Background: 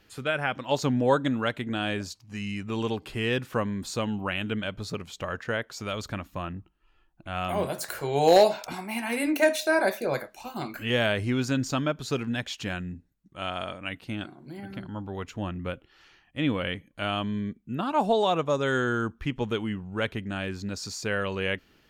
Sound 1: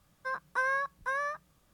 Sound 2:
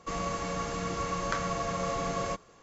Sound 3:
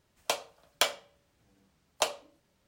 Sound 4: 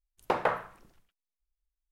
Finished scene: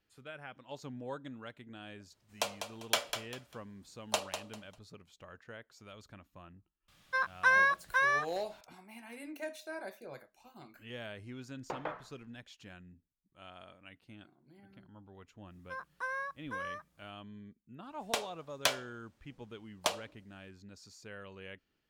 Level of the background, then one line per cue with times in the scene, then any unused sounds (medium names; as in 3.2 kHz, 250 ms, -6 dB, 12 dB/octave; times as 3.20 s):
background -19.5 dB
2.12 s: add 3 -4 dB + feedback delay 198 ms, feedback 26%, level -8 dB
6.88 s: add 1 -2 dB + peaking EQ 3.1 kHz +13.5 dB 2.1 oct
11.40 s: add 4 -12.5 dB + low-pass 4.5 kHz
15.45 s: add 1 -8 dB, fades 0.10 s
17.84 s: add 3 -3 dB + loudspeaker Doppler distortion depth 0.32 ms
not used: 2